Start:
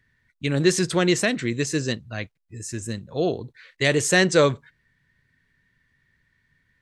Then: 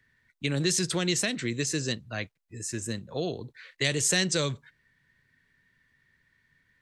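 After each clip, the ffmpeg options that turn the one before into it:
ffmpeg -i in.wav -filter_complex "[0:a]lowshelf=frequency=170:gain=-6.5,acrossover=split=190|2900[link_01][link_02][link_03];[link_02]acompressor=threshold=-30dB:ratio=5[link_04];[link_01][link_04][link_03]amix=inputs=3:normalize=0" out.wav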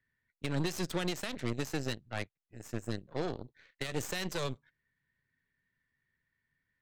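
ffmpeg -i in.wav -af "alimiter=limit=-18.5dB:level=0:latency=1:release=117,highshelf=frequency=5400:gain=-11.5,aeval=exprs='0.119*(cos(1*acos(clip(val(0)/0.119,-1,1)))-cos(1*PI/2))+0.0188*(cos(6*acos(clip(val(0)/0.119,-1,1)))-cos(6*PI/2))+0.0106*(cos(7*acos(clip(val(0)/0.119,-1,1)))-cos(7*PI/2))':channel_layout=same,volume=-4.5dB" out.wav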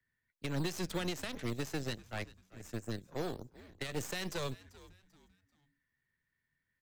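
ffmpeg -i in.wav -filter_complex "[0:a]asplit=4[link_01][link_02][link_03][link_04];[link_02]adelay=390,afreqshift=-94,volume=-19dB[link_05];[link_03]adelay=780,afreqshift=-188,volume=-28.4dB[link_06];[link_04]adelay=1170,afreqshift=-282,volume=-37.7dB[link_07];[link_01][link_05][link_06][link_07]amix=inputs=4:normalize=0,acrossover=split=120|510|4900[link_08][link_09][link_10][link_11];[link_09]acrusher=samples=9:mix=1:aa=0.000001:lfo=1:lforange=5.4:lforate=3.4[link_12];[link_08][link_12][link_10][link_11]amix=inputs=4:normalize=0,volume=-2.5dB" out.wav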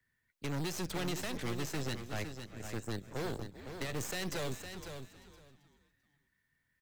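ffmpeg -i in.wav -af "asoftclip=type=hard:threshold=-38dB,aecho=1:1:509|1018:0.376|0.0601,volume=4dB" out.wav

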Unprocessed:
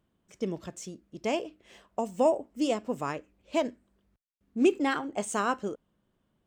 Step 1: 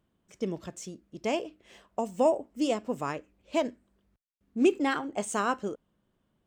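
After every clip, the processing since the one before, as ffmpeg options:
ffmpeg -i in.wav -af anull out.wav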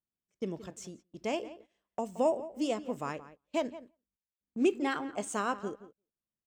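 ffmpeg -i in.wav -filter_complex "[0:a]asplit=2[link_01][link_02];[link_02]adelay=173,lowpass=frequency=2400:poles=1,volume=-15dB,asplit=2[link_03][link_04];[link_04]adelay=173,lowpass=frequency=2400:poles=1,volume=0.22[link_05];[link_01][link_03][link_05]amix=inputs=3:normalize=0,agate=range=-22dB:threshold=-48dB:ratio=16:detection=peak,volume=-4dB" out.wav

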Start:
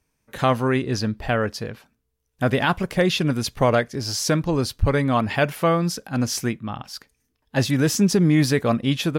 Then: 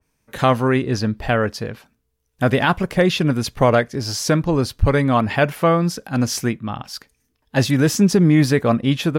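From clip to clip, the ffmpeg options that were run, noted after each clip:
ffmpeg -i in.wav -af "adynamicequalizer=threshold=0.0141:dfrequency=2500:dqfactor=0.7:tfrequency=2500:tqfactor=0.7:attack=5:release=100:ratio=0.375:range=2.5:mode=cutabove:tftype=highshelf,volume=3.5dB" out.wav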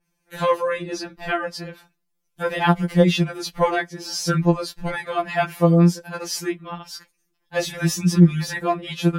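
ffmpeg -i in.wav -af "afftfilt=real='re*2.83*eq(mod(b,8),0)':imag='im*2.83*eq(mod(b,8),0)':win_size=2048:overlap=0.75,volume=-1dB" out.wav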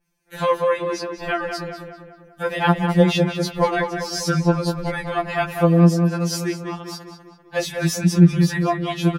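ffmpeg -i in.wav -filter_complex "[0:a]asplit=2[link_01][link_02];[link_02]adelay=196,lowpass=frequency=2600:poles=1,volume=-6dB,asplit=2[link_03][link_04];[link_04]adelay=196,lowpass=frequency=2600:poles=1,volume=0.55,asplit=2[link_05][link_06];[link_06]adelay=196,lowpass=frequency=2600:poles=1,volume=0.55,asplit=2[link_07][link_08];[link_08]adelay=196,lowpass=frequency=2600:poles=1,volume=0.55,asplit=2[link_09][link_10];[link_10]adelay=196,lowpass=frequency=2600:poles=1,volume=0.55,asplit=2[link_11][link_12];[link_12]adelay=196,lowpass=frequency=2600:poles=1,volume=0.55,asplit=2[link_13][link_14];[link_14]adelay=196,lowpass=frequency=2600:poles=1,volume=0.55[link_15];[link_01][link_03][link_05][link_07][link_09][link_11][link_13][link_15]amix=inputs=8:normalize=0" out.wav

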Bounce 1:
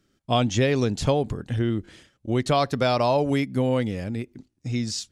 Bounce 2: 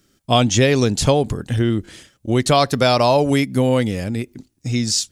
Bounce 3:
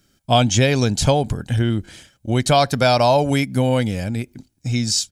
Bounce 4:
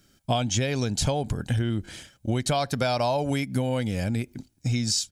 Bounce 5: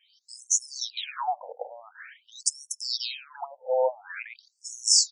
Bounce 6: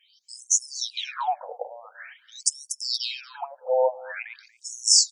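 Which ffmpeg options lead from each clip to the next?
ffmpeg -i in.wav -af "highshelf=frequency=5900:gain=11.5,volume=6dB" out.wav
ffmpeg -i in.wav -af "aecho=1:1:1.3:0.36,volume=-1dB" out.wav
ffmpeg -i in.wav -af "acompressor=threshold=-22dB:ratio=6" out.wav
ffmpeg -i in.wav -filter_complex "[0:a]acrossover=split=270|2000[link_01][link_02][link_03];[link_01]adelay=40[link_04];[link_02]adelay=110[link_05];[link_04][link_05][link_03]amix=inputs=3:normalize=0,afftfilt=real='re*between(b*sr/1024,630*pow(7900/630,0.5+0.5*sin(2*PI*0.47*pts/sr))/1.41,630*pow(7900/630,0.5+0.5*sin(2*PI*0.47*pts/sr))*1.41)':imag='im*between(b*sr/1024,630*pow(7900/630,0.5+0.5*sin(2*PI*0.47*pts/sr))/1.41,630*pow(7900/630,0.5+0.5*sin(2*PI*0.47*pts/sr))*1.41)':win_size=1024:overlap=0.75,volume=8dB" out.wav
ffmpeg -i in.wav -af "aecho=1:1:235:0.1,volume=2.5dB" out.wav

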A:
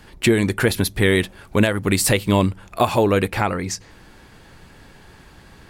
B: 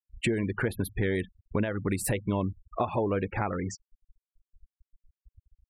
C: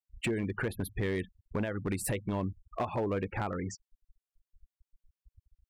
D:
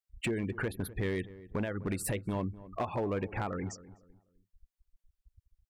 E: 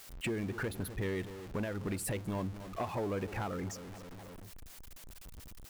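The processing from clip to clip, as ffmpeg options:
ffmpeg -i in.wav -af "afftfilt=real='re*gte(hypot(re,im),0.0631)':imag='im*gte(hypot(re,im),0.0631)':win_size=1024:overlap=0.75,equalizer=frequency=4900:width=0.88:gain=-13,acompressor=threshold=-30dB:ratio=2.5" out.wav
ffmpeg -i in.wav -af "asoftclip=type=hard:threshold=-22dB,volume=-3.5dB" out.wav
ffmpeg -i in.wav -filter_complex "[0:a]asplit=2[link_01][link_02];[link_02]adelay=252,lowpass=frequency=1100:poles=1,volume=-16.5dB,asplit=2[link_03][link_04];[link_04]adelay=252,lowpass=frequency=1100:poles=1,volume=0.34,asplit=2[link_05][link_06];[link_06]adelay=252,lowpass=frequency=1100:poles=1,volume=0.34[link_07];[link_01][link_03][link_05][link_07]amix=inputs=4:normalize=0,volume=-1dB" out.wav
ffmpeg -i in.wav -af "aeval=exprs='val(0)+0.5*0.0112*sgn(val(0))':channel_layout=same,volume=-4dB" out.wav

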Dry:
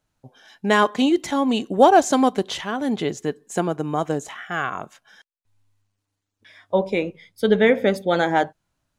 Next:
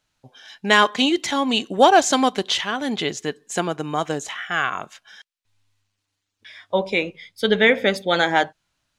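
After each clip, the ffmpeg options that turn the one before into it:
ffmpeg -i in.wav -af "equalizer=frequency=3500:width=0.39:gain=11.5,volume=-3dB" out.wav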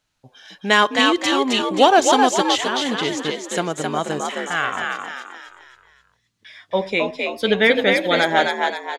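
ffmpeg -i in.wav -filter_complex "[0:a]asplit=6[link_01][link_02][link_03][link_04][link_05][link_06];[link_02]adelay=264,afreqshift=59,volume=-3.5dB[link_07];[link_03]adelay=528,afreqshift=118,volume=-11dB[link_08];[link_04]adelay=792,afreqshift=177,volume=-18.6dB[link_09];[link_05]adelay=1056,afreqshift=236,volume=-26.1dB[link_10];[link_06]adelay=1320,afreqshift=295,volume=-33.6dB[link_11];[link_01][link_07][link_08][link_09][link_10][link_11]amix=inputs=6:normalize=0" out.wav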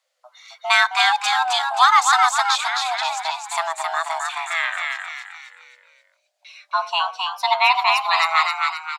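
ffmpeg -i in.wav -af "afreqshift=490,volume=-1dB" out.wav

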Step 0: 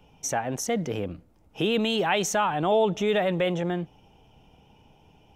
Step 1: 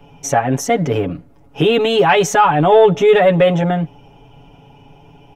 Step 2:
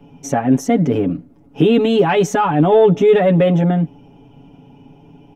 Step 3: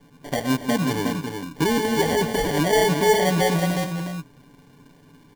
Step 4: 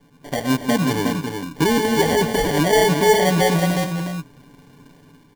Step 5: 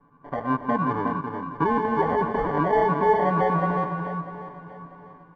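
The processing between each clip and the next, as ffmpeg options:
ffmpeg -i in.wav -filter_complex "[0:a]aecho=1:1:7.1:0.92,acrossover=split=2500[link_01][link_02];[link_01]acontrast=88[link_03];[link_03][link_02]amix=inputs=2:normalize=0,volume=3dB" out.wav
ffmpeg -i in.wav -af "equalizer=frequency=240:width=1:gain=14,volume=-6.5dB" out.wav
ffmpeg -i in.wav -filter_complex "[0:a]acrusher=samples=34:mix=1:aa=0.000001,asplit=2[link_01][link_02];[link_02]aecho=0:1:168|363:0.266|0.501[link_03];[link_01][link_03]amix=inputs=2:normalize=0,volume=-8.5dB" out.wav
ffmpeg -i in.wav -af "dynaudnorm=framelen=150:gausssize=5:maxgain=5dB,volume=-1.5dB" out.wav
ffmpeg -i in.wav -af "lowpass=frequency=1200:width_type=q:width=8.8,aecho=1:1:645|1290|1935:0.2|0.0698|0.0244,volume=-7.5dB" out.wav

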